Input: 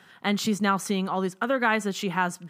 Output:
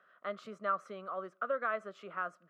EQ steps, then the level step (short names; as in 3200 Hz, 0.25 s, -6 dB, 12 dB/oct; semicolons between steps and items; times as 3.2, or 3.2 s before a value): double band-pass 870 Hz, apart 1 oct; -2.0 dB